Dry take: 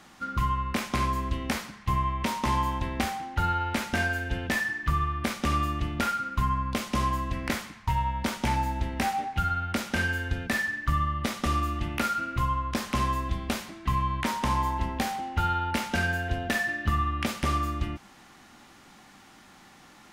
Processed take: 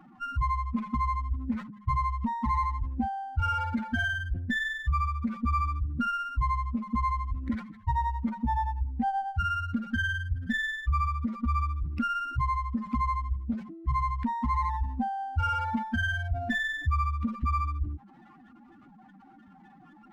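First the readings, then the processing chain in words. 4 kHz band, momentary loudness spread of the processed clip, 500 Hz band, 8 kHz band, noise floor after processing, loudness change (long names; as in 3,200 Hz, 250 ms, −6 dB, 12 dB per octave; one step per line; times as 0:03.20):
−7.0 dB, 4 LU, −14.0 dB, below −15 dB, −55 dBFS, −1.5 dB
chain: expanding power law on the bin magnitudes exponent 3.6
windowed peak hold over 5 samples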